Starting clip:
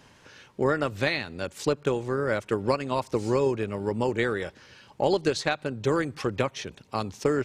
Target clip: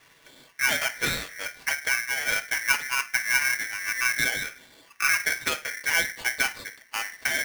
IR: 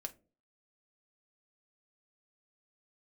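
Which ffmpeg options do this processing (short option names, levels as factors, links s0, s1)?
-filter_complex "[0:a]asettb=1/sr,asplit=3[s0][s1][s2];[s0]atrim=end=1.984[s3];[s1]atrim=start=1.98:end=4.29,asetpts=PTS-STARTPTS,afade=t=in:d=0.004:c=qsin,afade=t=out:st=2.306:d=0.004:c=qsin,adynamicsmooth=sensitivity=1.5:basefreq=910[s4];[s2]atrim=start=4.286[s5];[s3][s4]acrossfade=d=0.004:c1=hsin:c2=qsin[s6];[s6][s5]acrossfade=d=0.004:c1=qsin:c2=hsin[s7];[1:a]atrim=start_sample=2205,asetrate=37044,aresample=44100[s8];[s7][s8]afir=irnorm=-1:irlink=0,highpass=f=160:t=q:w=0.5412,highpass=f=160:t=q:w=1.307,lowpass=f=2900:t=q:w=0.5176,lowpass=f=2900:t=q:w=0.7071,lowpass=f=2900:t=q:w=1.932,afreqshift=-110,aeval=exprs='val(0)*sgn(sin(2*PI*1900*n/s))':c=same,volume=1.19"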